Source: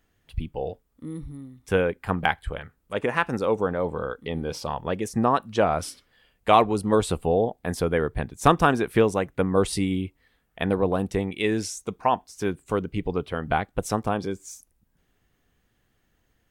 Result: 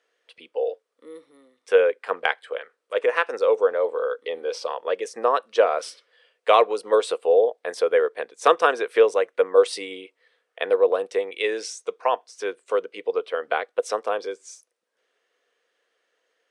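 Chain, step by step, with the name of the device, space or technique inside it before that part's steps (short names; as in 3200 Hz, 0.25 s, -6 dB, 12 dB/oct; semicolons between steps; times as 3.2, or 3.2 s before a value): phone speaker on a table (speaker cabinet 470–8300 Hz, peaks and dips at 480 Hz +9 dB, 820 Hz -7 dB, 7100 Hz -6 dB); gain +2 dB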